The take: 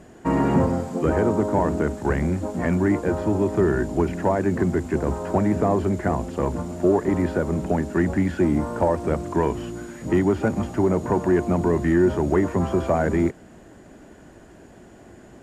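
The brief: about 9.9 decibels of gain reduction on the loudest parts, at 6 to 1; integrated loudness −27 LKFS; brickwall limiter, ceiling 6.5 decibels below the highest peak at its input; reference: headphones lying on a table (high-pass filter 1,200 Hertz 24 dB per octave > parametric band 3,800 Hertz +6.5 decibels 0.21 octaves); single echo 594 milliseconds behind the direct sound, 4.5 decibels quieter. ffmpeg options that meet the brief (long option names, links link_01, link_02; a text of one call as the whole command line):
ffmpeg -i in.wav -af "acompressor=threshold=-26dB:ratio=6,alimiter=limit=-21.5dB:level=0:latency=1,highpass=frequency=1200:width=0.5412,highpass=frequency=1200:width=1.3066,equalizer=frequency=3800:width_type=o:width=0.21:gain=6.5,aecho=1:1:594:0.596,volume=18dB" out.wav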